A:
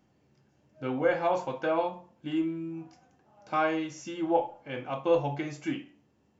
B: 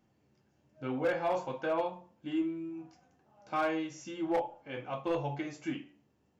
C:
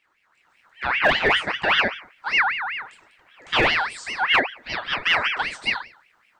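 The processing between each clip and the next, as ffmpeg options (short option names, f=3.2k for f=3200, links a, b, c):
-af "flanger=delay=8.8:depth=7.7:regen=-50:speed=0.39:shape=sinusoidal,volume=24dB,asoftclip=hard,volume=-24dB"
-af "dynaudnorm=f=290:g=3:m=8dB,aeval=exprs='val(0)*sin(2*PI*1800*n/s+1800*0.4/5.1*sin(2*PI*5.1*n/s))':c=same,volume=6.5dB"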